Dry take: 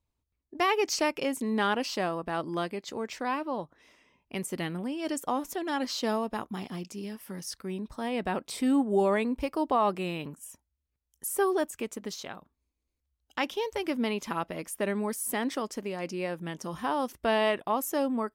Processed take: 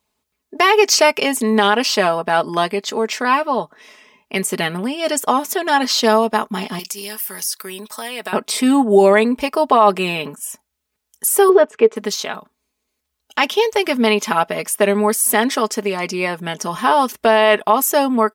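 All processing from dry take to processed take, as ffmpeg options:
-filter_complex "[0:a]asettb=1/sr,asplit=3[s0][s1][s2];[s0]atrim=end=6.794[s3];[s1]atrim=start=6.79:end=8.33,asetpts=PTS-STARTPTS,afade=t=in:d=0.004:c=qsin,afade=t=out:st=1.536:d=0.004:c=qsin,highpass=f=780:p=1,aemphasis=mode=production:type=50fm,acompressor=threshold=0.01:ratio=2.5:attack=3.2:release=140:knee=1:detection=peak[s4];[s2]atrim=start=8.326[s5];[s3][s4]acrossfade=d=0.004:c1=hsin:c2=qsin[s6];[s6][s5]acrossfade=d=0.004:c1=qsin:c2=hsin,asettb=1/sr,asplit=3[s7][s8][s9];[s7]atrim=end=11.494[s10];[s8]atrim=start=11.49:end=11.96,asetpts=PTS-STARTPTS,afade=t=in:d=0.004:c=qsin,afade=t=out:st=0.466:d=0.004:c=qsin,highpass=110,lowpass=2400,equalizer=f=440:w=4.8:g=11.5[s11];[s9]atrim=start=11.956[s12];[s10][s11]acrossfade=d=0.004:c1=hsin:c2=qsin[s13];[s13][s12]acrossfade=d=0.004:c1=qsin:c2=hsin,highpass=f=450:p=1,aecho=1:1:4.7:0.59,alimiter=level_in=6.68:limit=0.891:release=50:level=0:latency=1,volume=0.891"

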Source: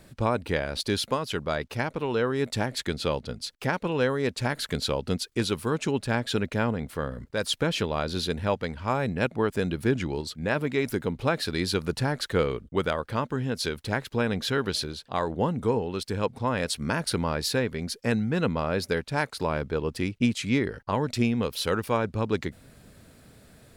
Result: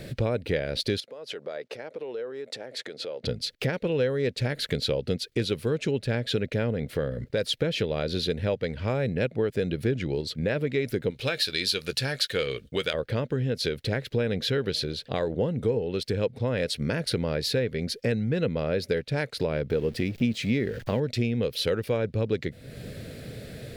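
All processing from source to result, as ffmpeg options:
-filter_complex "[0:a]asettb=1/sr,asplit=3[s0][s1][s2];[s0]atrim=end=1.004[s3];[s1]atrim=start=1:end=3.24,asetpts=PTS-STARTPTS,afade=t=in:d=0.004:c=qsin,afade=t=out:st=2.236:d=0.004:c=qsin,equalizer=f=3100:t=o:w=2.9:g=-13,acompressor=threshold=0.0158:ratio=16:attack=3.2:release=140:knee=1:detection=peak,highpass=610,lowpass=6600[s4];[s2]atrim=start=3.236[s5];[s3][s4]acrossfade=d=0.004:c1=hsin:c2=qsin[s6];[s6][s5]acrossfade=d=0.004:c1=qsin:c2=hsin,asettb=1/sr,asplit=3[s7][s8][s9];[s7]atrim=end=11.104[s10];[s8]atrim=start=11.1:end=12.94,asetpts=PTS-STARTPTS,afade=t=in:d=0.004:c=qsin,afade=t=out:st=1.836:d=0.004:c=qsin,tiltshelf=f=1200:g=-9.5,bandreject=f=2000:w=12,asplit=2[s11][s12];[s12]adelay=15,volume=0.211[s13];[s11][s13]amix=inputs=2:normalize=0,atrim=end_sample=81144[s14];[s9]atrim=start=12.936[s15];[s10][s14]acrossfade=d=0.004:c1=hsin:c2=qsin[s16];[s16][s15]acrossfade=d=0.004:c1=qsin:c2=hsin,asettb=1/sr,asplit=3[s17][s18][s19];[s17]atrim=end=19.704[s20];[s18]atrim=start=19.7:end=21,asetpts=PTS-STARTPTS,afade=t=in:d=0.004:c=qsin,afade=t=out:st=1.296:d=0.004:c=qsin,aeval=exprs='val(0)+0.5*0.0106*sgn(val(0))':c=same,equalizer=f=220:t=o:w=0.29:g=6.5[s21];[s19]atrim=start=20.996[s22];[s20][s21]acrossfade=d=0.004:c1=hsin:c2=qsin[s23];[s23][s22]acrossfade=d=0.004:c1=qsin:c2=hsin,equalizer=f=125:t=o:w=1:g=8,equalizer=f=500:t=o:w=1:g=11,equalizer=f=1000:t=o:w=1:g=-11,equalizer=f=2000:t=o:w=1:g=6,equalizer=f=4000:t=o:w=1:g=5,equalizer=f=8000:t=o:w=1:g=-4,acompressor=threshold=0.0112:ratio=2.5,volume=2.51"

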